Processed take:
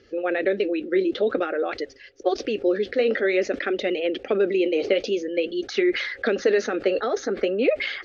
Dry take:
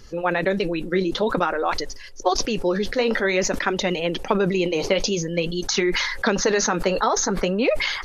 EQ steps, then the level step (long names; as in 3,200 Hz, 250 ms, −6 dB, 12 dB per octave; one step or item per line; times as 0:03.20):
band-pass filter 140–2,700 Hz
high-frequency loss of the air 54 metres
phaser with its sweep stopped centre 400 Hz, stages 4
+2.0 dB